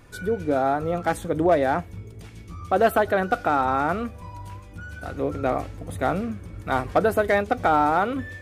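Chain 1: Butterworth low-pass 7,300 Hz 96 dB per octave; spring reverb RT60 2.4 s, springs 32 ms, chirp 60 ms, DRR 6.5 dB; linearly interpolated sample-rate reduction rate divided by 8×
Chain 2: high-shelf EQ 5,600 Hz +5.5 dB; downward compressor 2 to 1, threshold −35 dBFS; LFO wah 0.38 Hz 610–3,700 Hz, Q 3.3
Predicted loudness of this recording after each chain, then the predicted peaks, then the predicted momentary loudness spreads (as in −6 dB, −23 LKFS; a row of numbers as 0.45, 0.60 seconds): −23.5, −41.5 LKFS; −7.5, −21.0 dBFS; 16, 20 LU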